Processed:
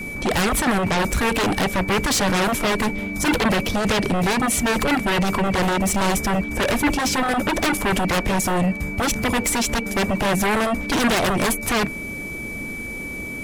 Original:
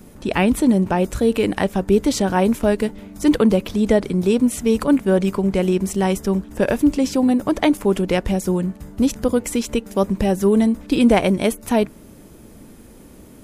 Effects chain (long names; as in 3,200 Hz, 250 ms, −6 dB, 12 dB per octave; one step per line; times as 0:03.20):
steady tone 2,300 Hz −39 dBFS
in parallel at −6 dB: sine wavefolder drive 19 dB, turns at −3 dBFS
on the sum: level −9 dB